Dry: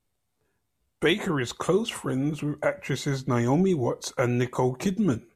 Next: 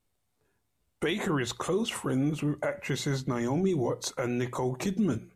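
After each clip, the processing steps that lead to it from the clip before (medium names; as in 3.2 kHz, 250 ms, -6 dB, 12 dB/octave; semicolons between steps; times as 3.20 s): peak limiter -19.5 dBFS, peak gain reduction 8.5 dB; hum notches 60/120/180 Hz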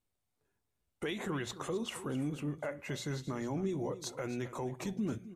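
delay 264 ms -14.5 dB; trim -8 dB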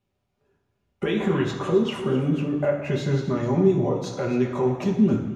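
reverberation RT60 1.1 s, pre-delay 3 ms, DRR -2 dB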